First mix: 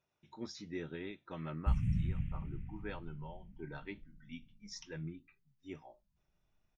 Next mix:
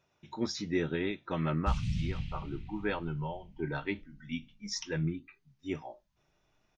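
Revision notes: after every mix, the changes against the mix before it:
speech +11.0 dB; background: remove Butterworth band-stop 4600 Hz, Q 0.53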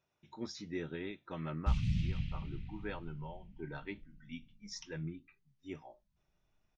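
speech -9.0 dB; background: add high shelf 6000 Hz -10.5 dB

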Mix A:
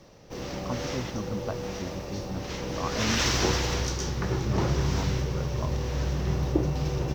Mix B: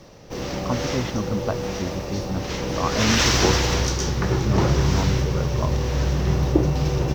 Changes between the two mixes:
speech +8.0 dB; background +6.5 dB

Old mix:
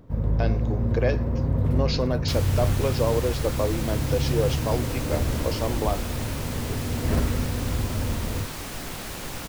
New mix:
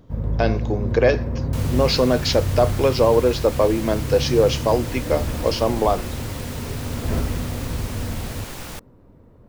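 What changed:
speech +8.5 dB; second sound: entry -0.75 s

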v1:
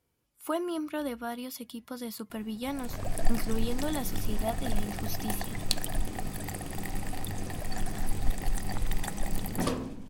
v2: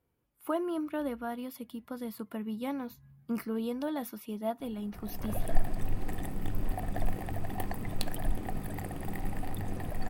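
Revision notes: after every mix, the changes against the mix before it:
background: entry +2.30 s; master: add bell 6300 Hz -13.5 dB 2 oct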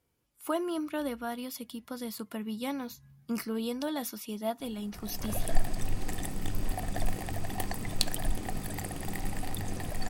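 master: add bell 6300 Hz +13.5 dB 2 oct

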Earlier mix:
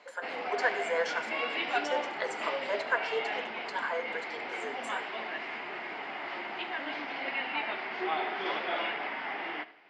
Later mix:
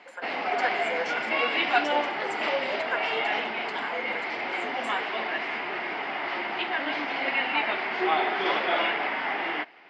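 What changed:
background +9.0 dB; reverb: off

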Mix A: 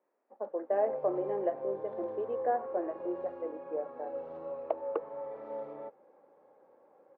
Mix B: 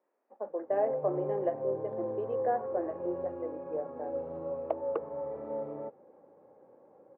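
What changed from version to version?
background: add tilt -4 dB/oct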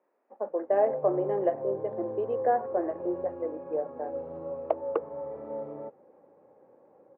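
speech +5.0 dB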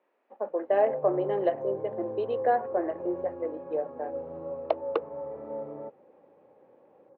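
speech: remove Gaussian blur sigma 4.2 samples

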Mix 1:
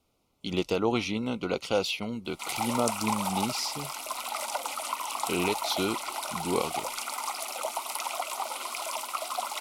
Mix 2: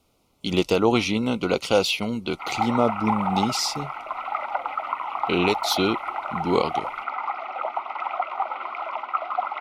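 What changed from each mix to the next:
speech +7.0 dB; background: add speaker cabinet 210–2500 Hz, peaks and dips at 340 Hz +4 dB, 770 Hz +9 dB, 1300 Hz +10 dB, 2000 Hz +6 dB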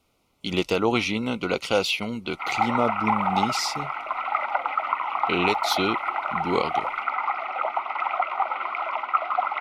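speech -3.5 dB; master: add bell 1900 Hz +6 dB 1.3 oct

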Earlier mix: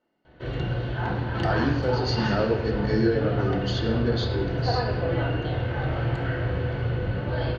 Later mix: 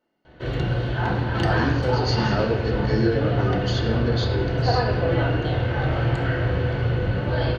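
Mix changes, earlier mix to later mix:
background +4.0 dB; master: remove air absorption 65 m

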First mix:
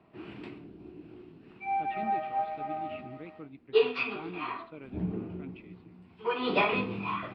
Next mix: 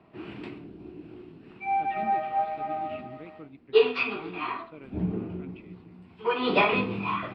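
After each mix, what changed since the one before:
background +4.0 dB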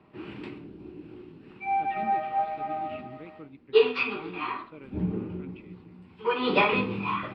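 master: add Butterworth band-stop 680 Hz, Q 7.2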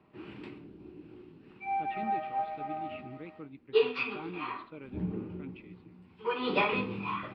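background -5.5 dB

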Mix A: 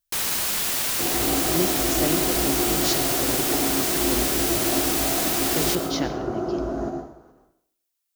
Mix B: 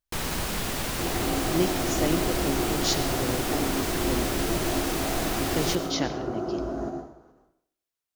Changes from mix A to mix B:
first sound: add tilt -3 dB/oct; second sound -3.5 dB

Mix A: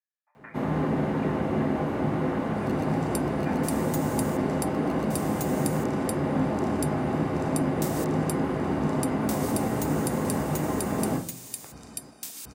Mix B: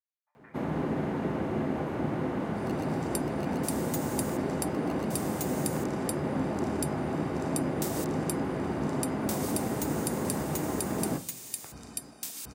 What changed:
speech -10.5 dB; first sound: send -10.0 dB

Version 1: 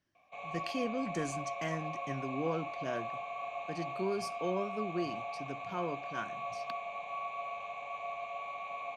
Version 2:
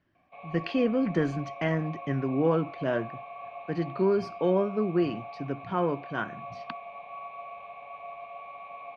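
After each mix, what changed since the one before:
speech +11.0 dB; master: add air absorption 330 m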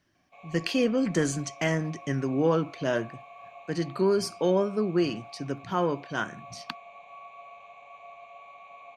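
background -7.0 dB; master: remove air absorption 330 m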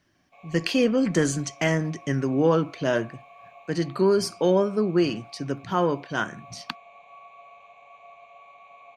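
speech +3.5 dB; background: send -6.0 dB

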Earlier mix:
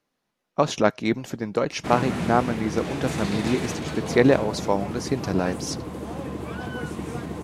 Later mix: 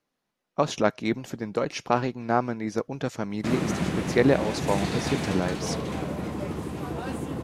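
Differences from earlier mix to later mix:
speech -3.0 dB; background: entry +1.60 s

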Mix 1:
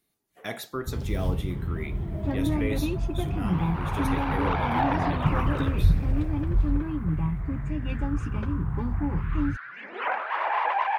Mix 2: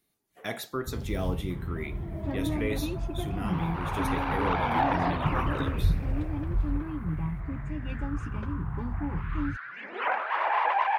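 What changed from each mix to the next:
first sound -4.5 dB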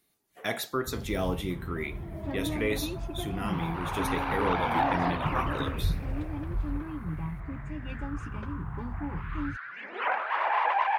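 speech +4.0 dB; master: add low shelf 360 Hz -4 dB

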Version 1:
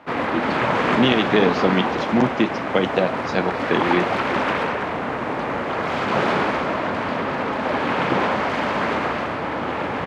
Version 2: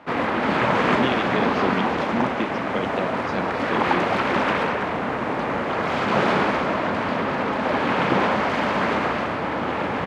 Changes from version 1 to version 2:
speech -8.5 dB; background: add bell 200 Hz +3 dB 0.32 oct

